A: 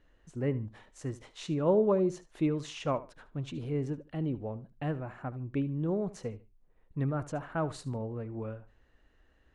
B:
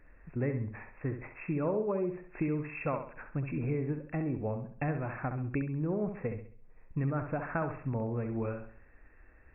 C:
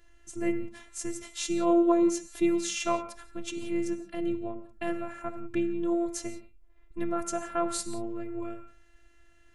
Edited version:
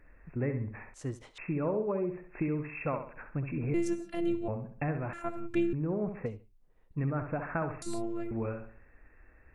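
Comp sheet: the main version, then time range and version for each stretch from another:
B
0.94–1.38 s: from A
3.74–4.48 s: from C
5.13–5.73 s: from C
6.26–6.98 s: from A
7.82–8.31 s: from C

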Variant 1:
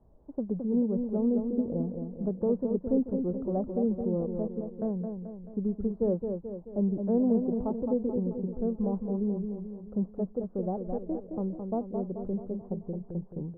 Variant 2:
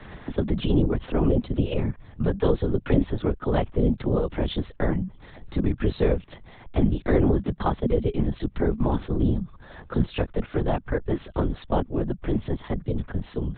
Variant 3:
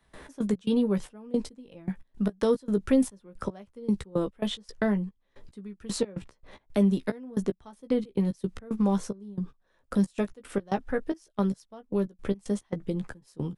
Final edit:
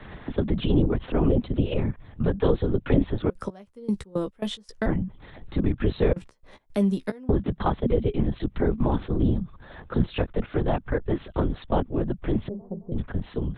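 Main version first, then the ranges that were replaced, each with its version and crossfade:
2
3.30–4.86 s: from 3
6.13–7.29 s: from 3
12.49–12.92 s: from 1

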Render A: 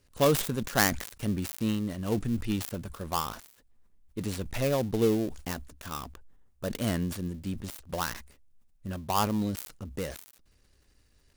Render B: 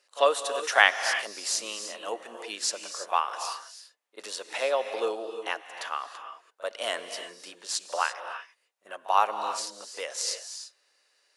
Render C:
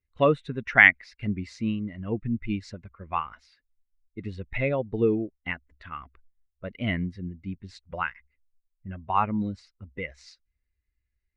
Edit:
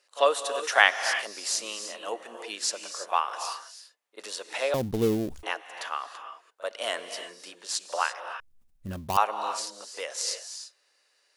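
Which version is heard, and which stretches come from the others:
B
4.74–5.43 s: from A
8.40–9.17 s: from A
not used: C

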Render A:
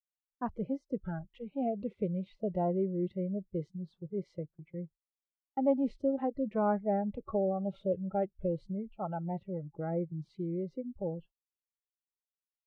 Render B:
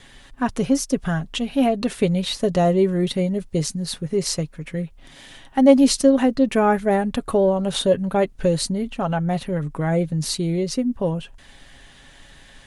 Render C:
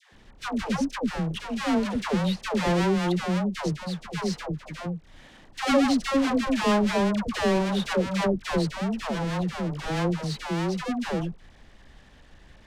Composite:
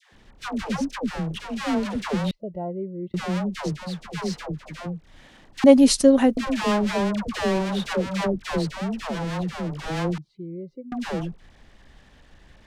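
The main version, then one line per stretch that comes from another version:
C
2.31–3.14 s: from A
5.64–6.37 s: from B
10.18–10.92 s: from A

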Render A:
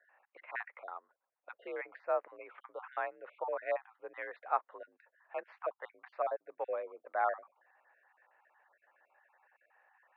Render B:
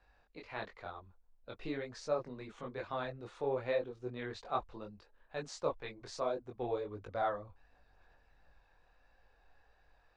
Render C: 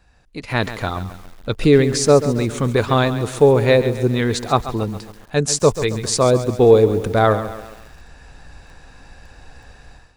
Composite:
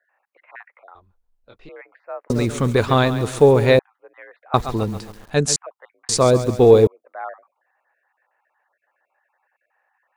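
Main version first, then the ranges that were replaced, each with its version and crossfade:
A
0.95–1.69 s: from B
2.30–3.79 s: from C
4.54–5.56 s: from C
6.09–6.87 s: from C

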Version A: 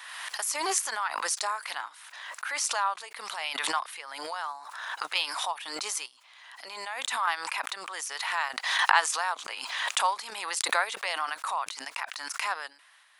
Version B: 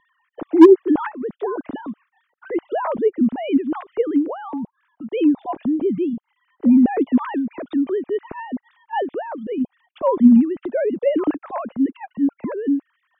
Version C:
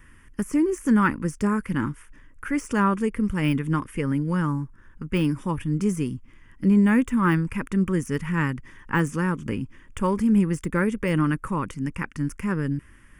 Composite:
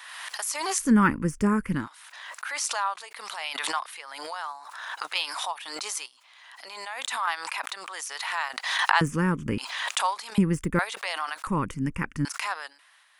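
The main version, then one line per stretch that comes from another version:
A
0.84–1.80 s: from C, crossfade 0.16 s
9.01–9.58 s: from C
10.38–10.79 s: from C
11.47–12.25 s: from C
not used: B

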